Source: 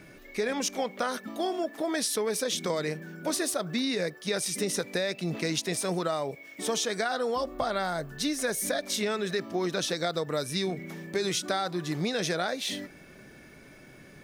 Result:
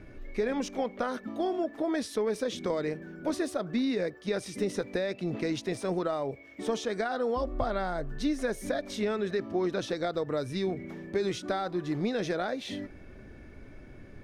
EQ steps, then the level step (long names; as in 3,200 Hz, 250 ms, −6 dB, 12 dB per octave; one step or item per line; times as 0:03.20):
RIAA equalisation playback
parametric band 160 Hz −12 dB 0.56 octaves
−2.5 dB